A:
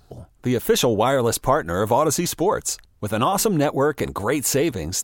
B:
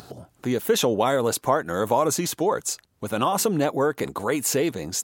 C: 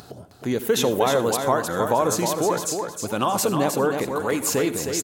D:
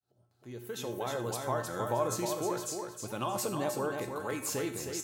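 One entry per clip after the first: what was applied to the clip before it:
high-pass filter 140 Hz 12 dB per octave; upward compression, threshold −30 dBFS; level −2.5 dB
repeating echo 312 ms, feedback 29%, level −6 dB; convolution reverb RT60 0.30 s, pre-delay 68 ms, DRR 13.5 dB
fade in at the beginning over 1.63 s; tuned comb filter 120 Hz, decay 0.44 s, harmonics odd, mix 80%

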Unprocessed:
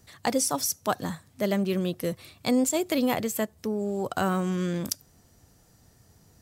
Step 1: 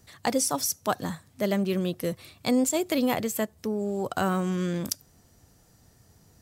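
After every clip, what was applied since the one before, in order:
no processing that can be heard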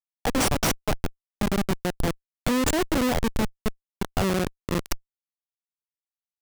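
in parallel at +1 dB: output level in coarse steps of 15 dB
on the sum: comparator with hysteresis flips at −19 dBFS
level +3 dB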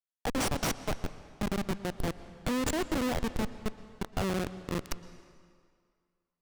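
high-shelf EQ 11,000 Hz −4.5 dB
on a send at −14 dB: convolution reverb RT60 2.1 s, pre-delay 107 ms
on the sum: level −7 dB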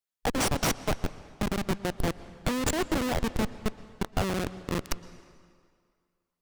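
harmonic and percussive parts rebalanced percussive +5 dB

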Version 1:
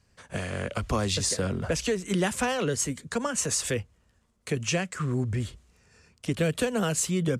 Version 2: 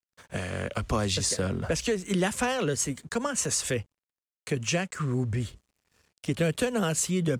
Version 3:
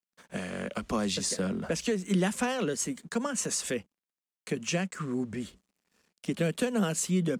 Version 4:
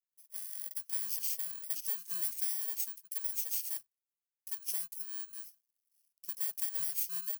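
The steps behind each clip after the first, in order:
dead-zone distortion −57.5 dBFS
low shelf with overshoot 150 Hz −7.5 dB, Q 3; level −3.5 dB
samples in bit-reversed order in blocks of 32 samples; first difference; level −6 dB

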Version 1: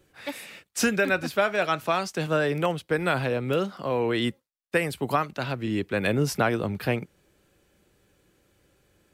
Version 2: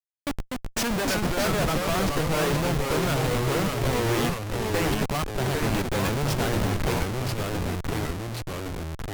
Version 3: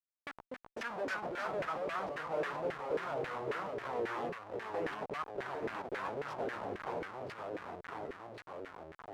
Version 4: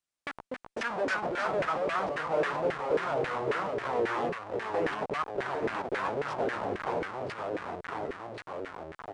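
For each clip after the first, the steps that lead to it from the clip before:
hum removal 75.15 Hz, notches 3; comparator with hysteresis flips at −30 dBFS; delay with pitch and tempo change per echo 213 ms, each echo −2 semitones, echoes 2; level +2 dB
auto-filter band-pass saw down 3.7 Hz 410–1,900 Hz; level −4.5 dB
downsampling to 22,050 Hz; level +7.5 dB

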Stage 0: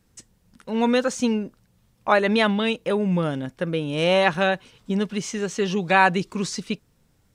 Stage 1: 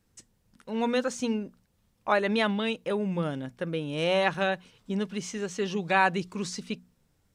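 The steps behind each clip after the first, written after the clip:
mains-hum notches 60/120/180/240 Hz
level −6 dB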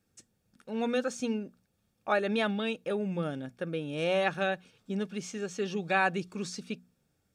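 notch comb filter 1,000 Hz
level −2.5 dB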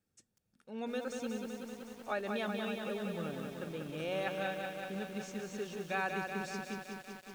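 feedback echo at a low word length 188 ms, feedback 80%, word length 8 bits, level −4.5 dB
level −9 dB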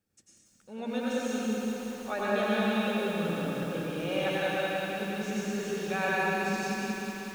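dense smooth reverb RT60 1.8 s, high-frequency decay 1×, pre-delay 80 ms, DRR −5.5 dB
level +1.5 dB

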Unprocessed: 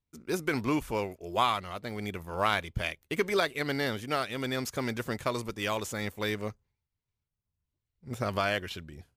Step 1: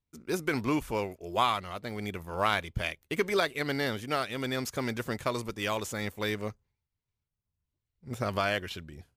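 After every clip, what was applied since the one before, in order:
no processing that can be heard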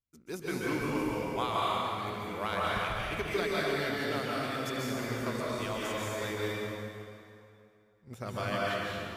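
dense smooth reverb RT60 2.6 s, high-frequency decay 0.8×, pre-delay 120 ms, DRR −6 dB
level −8.5 dB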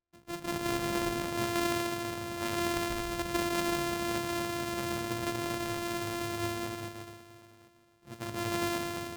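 samples sorted by size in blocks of 128 samples

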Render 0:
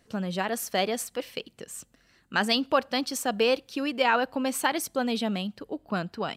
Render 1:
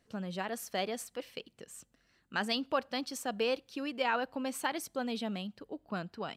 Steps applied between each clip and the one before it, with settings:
high-shelf EQ 9,100 Hz −3.5 dB
level −8 dB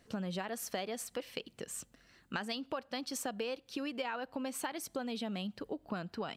downward compressor 10 to 1, threshold −42 dBFS, peak gain reduction 17 dB
level +7 dB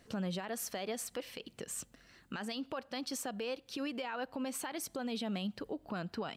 brickwall limiter −32.5 dBFS, peak gain reduction 11.5 dB
level +2.5 dB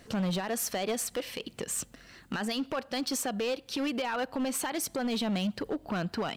hard clipping −35 dBFS, distortion −15 dB
level +8.5 dB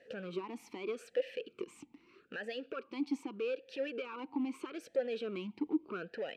formant filter swept between two vowels e-u 0.8 Hz
level +4.5 dB

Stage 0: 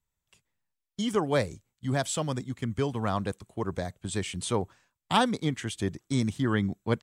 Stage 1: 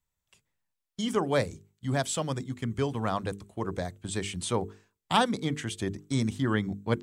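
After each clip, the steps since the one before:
mains-hum notches 50/100/150/200/250/300/350/400/450 Hz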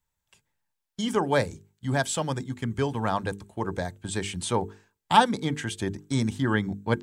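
hollow resonant body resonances 880/1,600 Hz, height 9 dB
level +2 dB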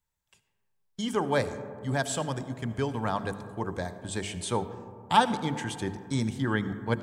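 convolution reverb RT60 2.5 s, pre-delay 35 ms, DRR 12 dB
level −3 dB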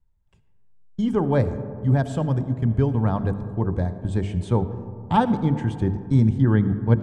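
spectral tilt −4.5 dB per octave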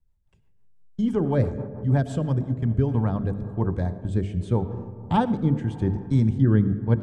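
rotating-speaker cabinet horn 6 Hz, later 0.85 Hz, at 0:02.33

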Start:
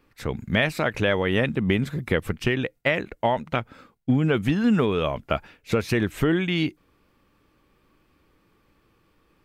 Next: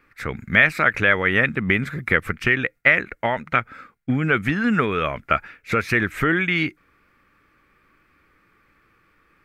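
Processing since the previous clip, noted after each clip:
flat-topped bell 1,700 Hz +11.5 dB 1.2 octaves
level −1 dB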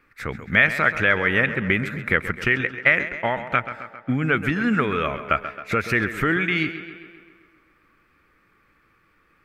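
tape delay 133 ms, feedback 66%, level −11 dB, low-pass 4,200 Hz
level −1.5 dB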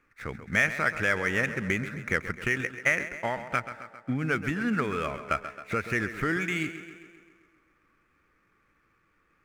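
running median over 9 samples
level −6.5 dB

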